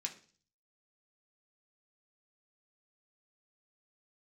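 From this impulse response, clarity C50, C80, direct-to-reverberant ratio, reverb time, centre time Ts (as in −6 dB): 13.0 dB, 17.5 dB, 1.0 dB, 0.45 s, 10 ms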